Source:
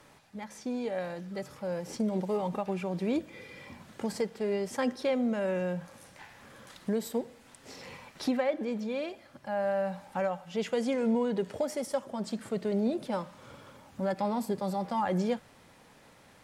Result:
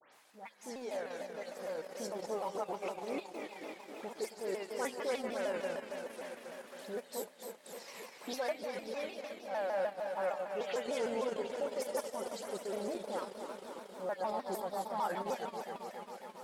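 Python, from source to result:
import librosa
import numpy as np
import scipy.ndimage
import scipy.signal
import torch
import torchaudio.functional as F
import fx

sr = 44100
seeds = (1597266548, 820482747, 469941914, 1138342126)

y = fx.reverse_delay_fb(x, sr, ms=136, feedback_pct=85, wet_db=-7.5)
y = scipy.signal.sosfilt(scipy.signal.butter(2, 460.0, 'highpass', fs=sr, output='sos'), y)
y = fx.high_shelf(y, sr, hz=11000.0, db=7.5)
y = fx.dispersion(y, sr, late='highs', ms=129.0, hz=2700.0)
y = fx.transient(y, sr, attack_db=-3, sustain_db=-8)
y = fx.vibrato_shape(y, sr, shape='saw_down', rate_hz=6.6, depth_cents=160.0)
y = y * 10.0 ** (-3.5 / 20.0)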